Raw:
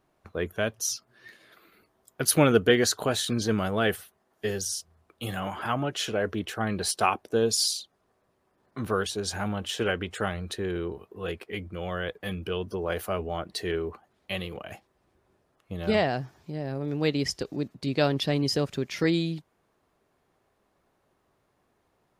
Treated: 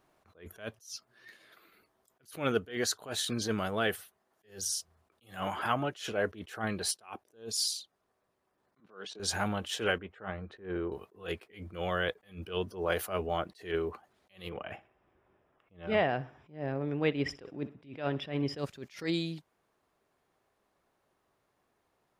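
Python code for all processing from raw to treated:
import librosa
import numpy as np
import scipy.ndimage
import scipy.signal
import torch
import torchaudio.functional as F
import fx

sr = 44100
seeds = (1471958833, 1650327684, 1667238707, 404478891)

y = fx.chain(x, sr, fx.highpass(hz=170.0, slope=24),
    fx.level_steps(step_db=19),
    fx.air_absorb(metres=140.0), at=(8.8, 9.2))
y = fx.chain(y, sr, fx.lowpass(hz=1700.0, slope=12),
    fx.doubler(ms=15.0, db=-13),
    fx.upward_expand(threshold_db=-41.0, expansion=1.5), at=(9.98, 10.92))
y = fx.chain(y, sr, fx.savgol(points=25),
    fx.echo_feedback(ms=63, feedback_pct=44, wet_db=-20), at=(14.49, 18.58))
y = fx.low_shelf(y, sr, hz=370.0, db=-5.5)
y = fx.rider(y, sr, range_db=4, speed_s=0.5)
y = fx.attack_slew(y, sr, db_per_s=170.0)
y = y * 10.0 ** (-1.5 / 20.0)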